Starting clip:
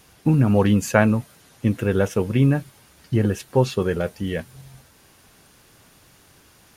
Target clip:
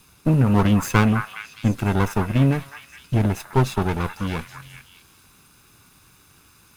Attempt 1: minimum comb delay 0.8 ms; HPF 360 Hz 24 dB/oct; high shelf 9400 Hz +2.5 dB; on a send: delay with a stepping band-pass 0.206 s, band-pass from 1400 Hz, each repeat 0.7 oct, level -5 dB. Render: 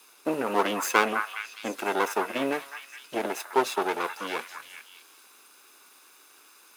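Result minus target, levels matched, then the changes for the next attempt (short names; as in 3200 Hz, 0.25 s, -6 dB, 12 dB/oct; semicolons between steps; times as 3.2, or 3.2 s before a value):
500 Hz band +6.0 dB
remove: HPF 360 Hz 24 dB/oct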